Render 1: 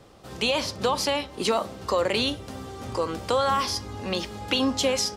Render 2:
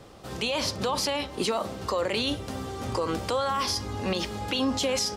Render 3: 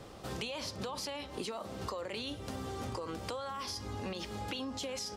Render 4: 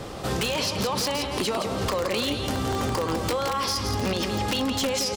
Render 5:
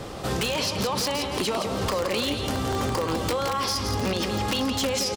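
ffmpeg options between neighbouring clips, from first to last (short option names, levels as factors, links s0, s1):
-af "alimiter=limit=0.0891:level=0:latency=1:release=45,volume=1.41"
-af "acompressor=threshold=0.0178:ratio=12,volume=0.891"
-filter_complex "[0:a]aecho=1:1:169|338|507|676|845:0.422|0.177|0.0744|0.0312|0.0131,asplit=2[s0][s1];[s1]acrusher=bits=4:mix=0:aa=0.000001,volume=0.562[s2];[s0][s2]amix=inputs=2:normalize=0,aeval=exprs='0.112*sin(PI/2*3.16*val(0)/0.112)':c=same"
-af "aecho=1:1:935:0.168"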